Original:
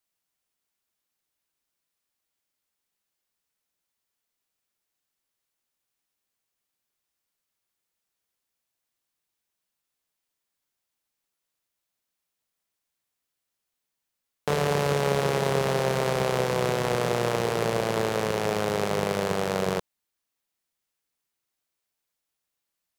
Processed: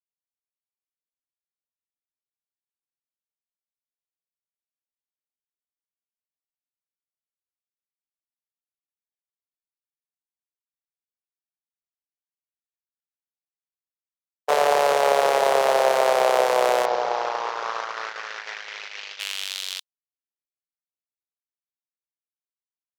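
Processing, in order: 16.85–19.2 CVSD 32 kbps; gate -28 dBFS, range -49 dB; high-pass sweep 650 Hz -> 3500 Hz, 16.81–19.6; gain +4 dB

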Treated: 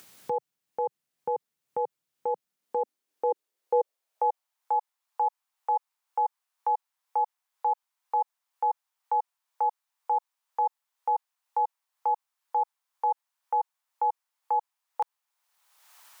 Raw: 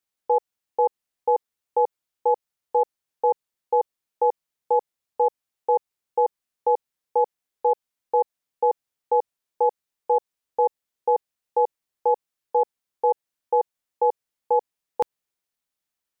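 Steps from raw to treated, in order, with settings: upward compressor, threshold -31 dBFS; limiter -21 dBFS, peak gain reduction 9 dB; high-pass sweep 140 Hz -> 920 Hz, 2.1–4.65

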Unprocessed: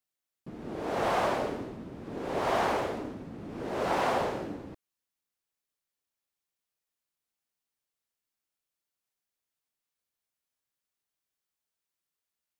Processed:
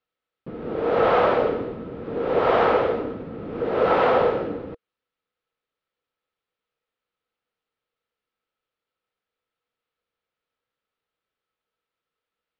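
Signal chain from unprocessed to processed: LPF 3700 Hz 24 dB/oct; small resonant body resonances 480/1300 Hz, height 12 dB, ringing for 45 ms; gain +6 dB

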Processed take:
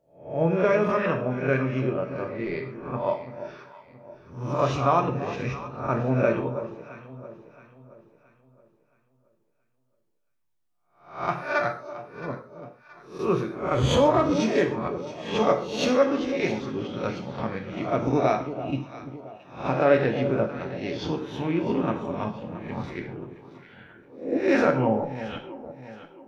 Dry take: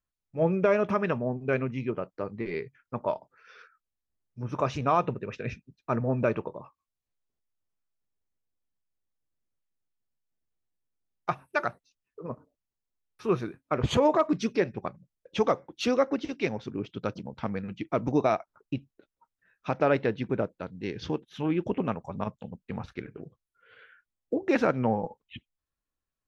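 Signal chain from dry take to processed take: spectral swells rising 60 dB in 0.47 s; echo with dull and thin repeats by turns 0.336 s, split 860 Hz, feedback 61%, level -10.5 dB; non-linear reverb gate 0.17 s falling, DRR 3.5 dB

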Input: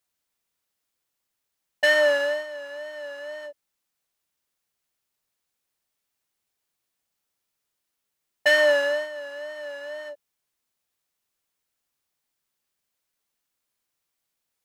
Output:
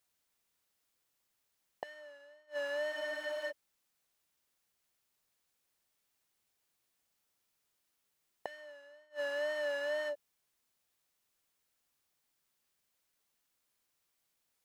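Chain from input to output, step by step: flipped gate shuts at -26 dBFS, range -33 dB; spectral freeze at 2.95, 0.55 s

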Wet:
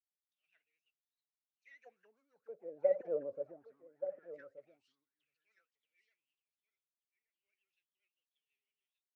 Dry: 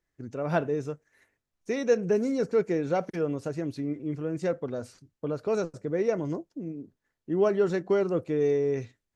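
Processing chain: G.711 law mismatch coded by mu; Doppler pass-by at 3.16, 10 m/s, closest 2.4 m; in parallel at -1 dB: compressor, threshold -45 dBFS, peak gain reduction 20 dB; on the sum: vibrato 12 Hz 73 cents; auto-wah 560–4200 Hz, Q 13, down, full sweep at -28.5 dBFS; rotary speaker horn 6.3 Hz; on a send: echo 1.177 s -8 dB; on the sum: three-band expander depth 70%

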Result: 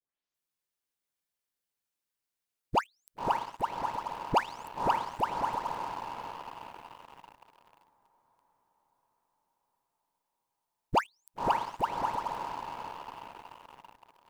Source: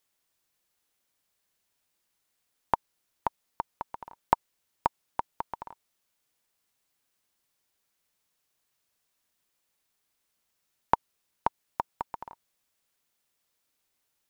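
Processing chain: spectral delay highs late, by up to 0.341 s; diffused feedback echo 0.555 s, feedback 61%, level -7.5 dB; sample leveller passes 3; gain -5.5 dB

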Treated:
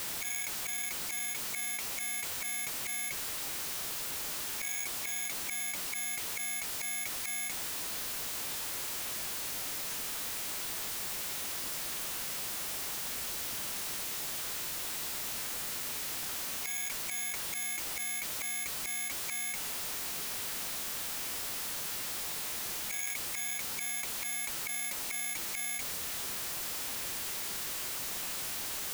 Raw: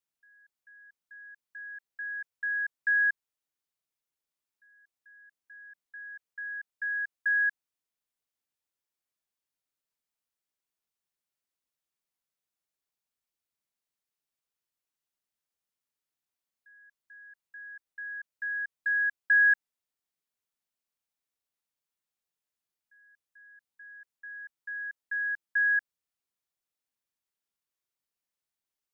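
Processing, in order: infinite clipping; formant shift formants +5 st; gain +1.5 dB

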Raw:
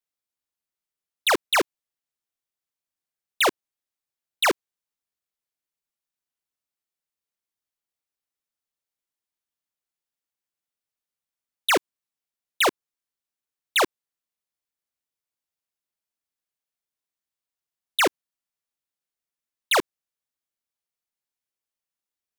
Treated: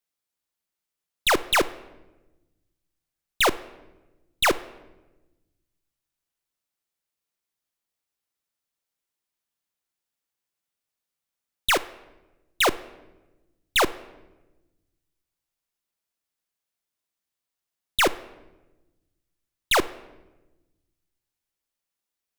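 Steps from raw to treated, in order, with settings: one diode to ground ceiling -27.5 dBFS; 11.7–12.66 low shelf 390 Hz -8 dB; reverb RT60 1.1 s, pre-delay 6 ms, DRR 15 dB; gain +3.5 dB

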